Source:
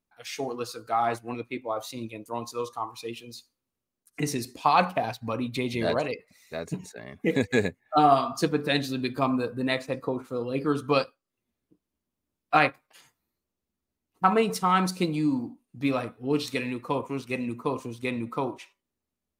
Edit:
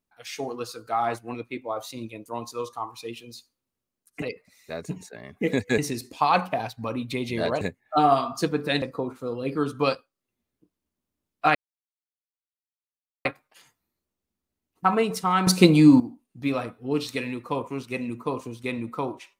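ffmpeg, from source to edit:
-filter_complex "[0:a]asplit=8[a][b][c][d][e][f][g][h];[a]atrim=end=4.222[i];[b]atrim=start=6.048:end=7.612[j];[c]atrim=start=4.218:end=6.052[k];[d]atrim=start=7.608:end=8.822[l];[e]atrim=start=9.908:end=12.64,asetpts=PTS-STARTPTS,afade=t=out:st=2.728:d=0.004:c=hsin,apad=pad_dur=1.7[m];[f]atrim=start=12.64:end=14.862,asetpts=PTS-STARTPTS,afade=t=in:d=0.004:c=hsin[n];[g]atrim=start=14.858:end=15.392,asetpts=PTS-STARTPTS,volume=11.5dB[o];[h]atrim=start=15.388[p];[i][j]acrossfade=d=0.004:c1=hsin:c2=hsin[q];[q][k]acrossfade=d=0.004:c1=hsin:c2=hsin[r];[r][l]acrossfade=d=0.004:c1=hsin:c2=hsin[s];[m][n]concat=n=2:v=0:a=1[t];[s][t]acrossfade=d=0.004:c1=hsin:c2=hsin[u];[u][o]acrossfade=d=0.004:c1=hsin:c2=hsin[v];[v][p]acrossfade=d=0.004:c1=hsin:c2=hsin"

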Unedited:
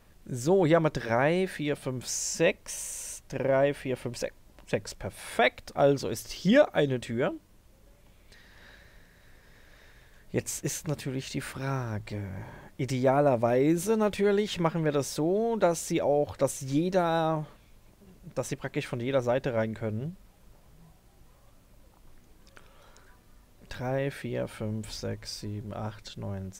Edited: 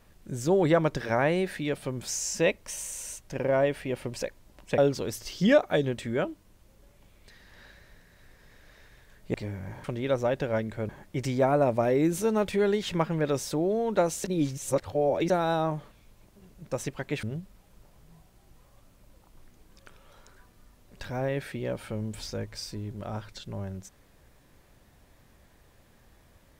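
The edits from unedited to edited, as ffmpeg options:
-filter_complex "[0:a]asplit=8[a][b][c][d][e][f][g][h];[a]atrim=end=4.782[i];[b]atrim=start=5.818:end=10.382[j];[c]atrim=start=12.038:end=12.542[k];[d]atrim=start=18.878:end=19.932[l];[e]atrim=start=12.538:end=15.892[m];[f]atrim=start=15.888:end=16.952,asetpts=PTS-STARTPTS,areverse[n];[g]atrim=start=16.948:end=18.882[o];[h]atrim=start=19.928[p];[i][j]acrossfade=d=0.004:c1=hsin:c2=hsin[q];[q][k]acrossfade=d=0.004:c1=hsin:c2=hsin[r];[r][l]acrossfade=d=0.004:c1=hsin:c2=hsin[s];[s][m]acrossfade=d=0.004:c1=hsin:c2=hsin[t];[t][n]acrossfade=d=0.004:c1=hsin:c2=hsin[u];[u][o]acrossfade=d=0.004:c1=hsin:c2=hsin[v];[v][p]acrossfade=d=0.004:c1=hsin:c2=hsin"

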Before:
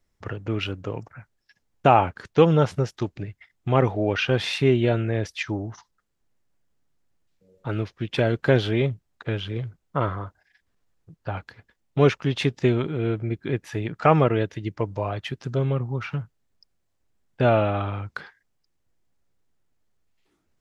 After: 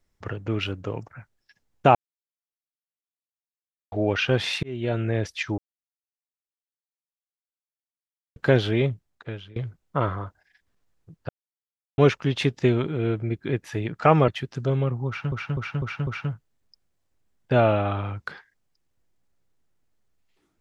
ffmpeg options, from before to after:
-filter_complex "[0:a]asplit=14[a][b][c][d][e][f][g][h][i][j][k][l][m][n];[a]atrim=end=1.95,asetpts=PTS-STARTPTS,afade=t=out:st=1.946:d=0.004:c=hsin[o];[b]atrim=start=1.95:end=3.92,asetpts=PTS-STARTPTS,volume=0[p];[c]atrim=start=3.92:end=4.63,asetpts=PTS-STARTPTS,afade=t=in:d=0.004:c=hsin,afade=t=out:st=0.706:d=0.004:c=hsin[q];[d]atrim=start=4.63:end=5.58,asetpts=PTS-STARTPTS,afade=t=in:d=0.45,afade=t=out:st=0.946:d=0.004:c=hsin[r];[e]atrim=start=5.58:end=8.36,asetpts=PTS-STARTPTS,volume=0[s];[f]atrim=start=8.36:end=9.56,asetpts=PTS-STARTPTS,afade=t=in:d=0.004:c=hsin,afade=t=out:st=0.53:d=0.67:silence=0.105925[t];[g]atrim=start=9.56:end=11.29,asetpts=PTS-STARTPTS,afade=t=in:d=0.004:c=hsin:silence=0.105925,afade=t=out:st=1.726:d=0.004:c=hsin[u];[h]atrim=start=11.29:end=11.98,asetpts=PTS-STARTPTS,volume=0[v];[i]atrim=start=11.98:end=14.282,asetpts=PTS-STARTPTS,afade=t=in:d=0.004:c=hsin[w];[j]atrim=start=15.168:end=16.212[x];[k]atrim=start=15.958:end=16.212[y];[l]atrim=start=15.958:end=16.212[z];[m]atrim=start=15.958:end=16.212[aa];[n]atrim=start=15.958[ab];[o][p][q][r][s][t][u][v][w]concat=n=9:v=0:a=1[ac];[ac][x]acrossfade=d=0.004:c1=hsin:c2=hsin[ad];[ad][y]acrossfade=d=0.004:c1=hsin:c2=hsin[ae];[ae][z]acrossfade=d=0.004:c1=hsin:c2=hsin[af];[af][aa]acrossfade=d=0.004:c1=hsin:c2=hsin[ag];[ag][ab]acrossfade=d=0.004:c1=hsin:c2=hsin"

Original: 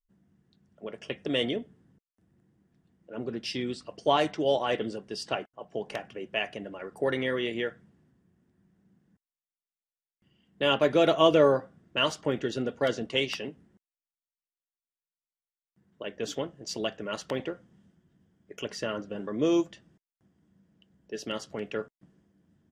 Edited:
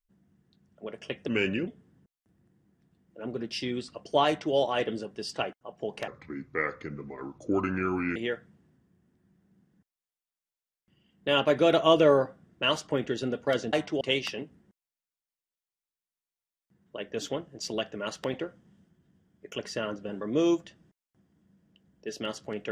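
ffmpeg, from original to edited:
-filter_complex "[0:a]asplit=7[a][b][c][d][e][f][g];[a]atrim=end=1.284[h];[b]atrim=start=1.28:end=1.6,asetpts=PTS-STARTPTS,asetrate=35721,aresample=44100,atrim=end_sample=17422,asetpts=PTS-STARTPTS[i];[c]atrim=start=1.596:end=6.004[j];[d]atrim=start=6:end=7.5,asetpts=PTS-STARTPTS,asetrate=31752,aresample=44100[k];[e]atrim=start=7.496:end=13.072[l];[f]atrim=start=4.188:end=4.472[m];[g]atrim=start=13.068[n];[h][i]acrossfade=d=0.004:c1=hsin:c2=hsin[o];[o][j]acrossfade=d=0.004:c1=hsin:c2=hsin[p];[p][k]acrossfade=d=0.004:c1=hsin:c2=hsin[q];[q][l]acrossfade=d=0.004:c1=hsin:c2=hsin[r];[r][m]acrossfade=d=0.004:c1=hsin:c2=hsin[s];[s][n]acrossfade=d=0.004:c1=hsin:c2=hsin"

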